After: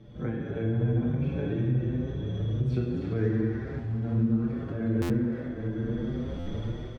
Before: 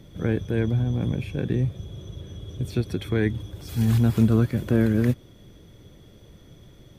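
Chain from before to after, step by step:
0:02.85–0:04.42: running median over 15 samples
low-pass filter 5,000 Hz 12 dB per octave
mains-hum notches 50/100 Hz
convolution reverb RT60 2.4 s, pre-delay 12 ms, DRR −3.5 dB
automatic gain control gain up to 15.5 dB
high-shelf EQ 2,600 Hz −10 dB
feedback echo with a high-pass in the loop 282 ms, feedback 39%, high-pass 430 Hz, level −7 dB
downward compressor 3 to 1, threshold −26 dBFS, peak gain reduction 14.5 dB
buffer that repeats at 0:05.01/0:06.38, samples 512, times 6
barber-pole flanger 6.5 ms +1.2 Hz

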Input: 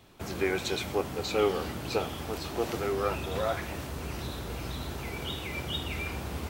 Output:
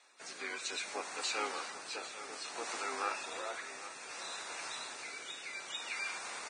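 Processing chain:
high-pass filter 1,100 Hz 12 dB per octave
parametric band 3,100 Hz −13 dB 0.26 octaves
in parallel at −2 dB: brickwall limiter −33 dBFS, peak gain reduction 11 dB
on the sum: rotating-speaker cabinet horn 0.6 Hz
pitch-shifted copies added −7 semitones −9 dB, +12 semitones −12 dB
on a send: single-tap delay 795 ms −13 dB
on the sum: level −3 dB
Ogg Vorbis 16 kbit/s 22,050 Hz

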